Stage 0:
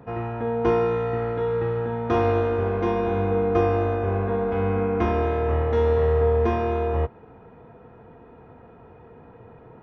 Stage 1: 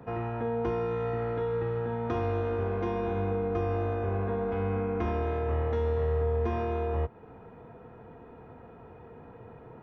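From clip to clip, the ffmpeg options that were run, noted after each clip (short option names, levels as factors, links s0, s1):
-filter_complex "[0:a]acrossover=split=170[s0][s1];[s1]acompressor=threshold=0.0631:ratio=3[s2];[s0][s2]amix=inputs=2:normalize=0,asplit=2[s3][s4];[s4]alimiter=level_in=1.12:limit=0.0631:level=0:latency=1:release=262,volume=0.891,volume=1.26[s5];[s3][s5]amix=inputs=2:normalize=0,volume=0.376"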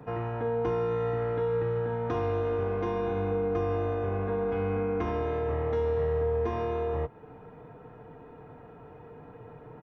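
-af "aecho=1:1:6.7:0.39"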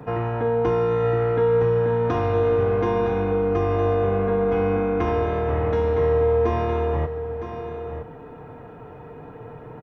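-af "aecho=1:1:962:0.335,volume=2.37"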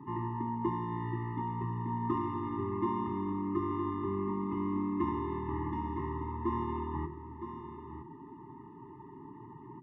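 -af "bandpass=f=480:t=q:w=0.86:csg=0,bandreject=f=50:t=h:w=6,bandreject=f=100:t=h:w=6,bandreject=f=150:t=h:w=6,bandreject=f=200:t=h:w=6,bandreject=f=250:t=h:w=6,bandreject=f=300:t=h:w=6,bandreject=f=350:t=h:w=6,afftfilt=real='re*eq(mod(floor(b*sr/1024/430),2),0)':imag='im*eq(mod(floor(b*sr/1024/430),2),0)':win_size=1024:overlap=0.75"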